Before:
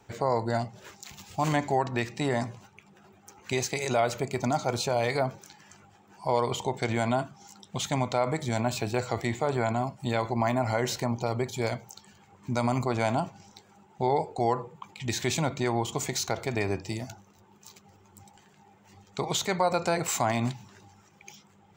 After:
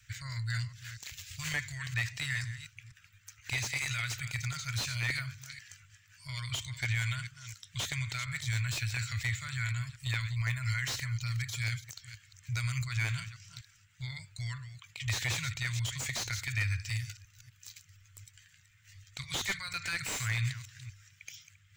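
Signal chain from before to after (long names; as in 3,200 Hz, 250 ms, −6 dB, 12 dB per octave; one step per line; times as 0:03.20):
delay that plays each chunk backwards 243 ms, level −13 dB
elliptic band-stop filter 110–1,700 Hz, stop band 40 dB
slew-rate limiting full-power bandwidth 73 Hz
level +3 dB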